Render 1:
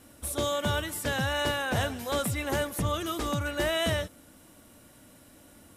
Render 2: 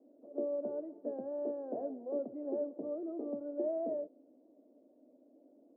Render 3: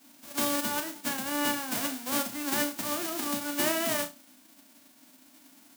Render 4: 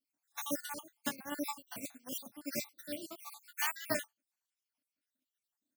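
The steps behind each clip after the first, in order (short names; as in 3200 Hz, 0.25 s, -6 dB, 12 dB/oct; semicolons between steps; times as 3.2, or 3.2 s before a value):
Chebyshev band-pass 260–650 Hz, order 3; gain -4 dB
spectral whitening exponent 0.1; on a send: flutter echo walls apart 5.9 m, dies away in 0.24 s; on the sum: gain +6.5 dB
random spectral dropouts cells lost 64%; upward expander 2.5:1, over -49 dBFS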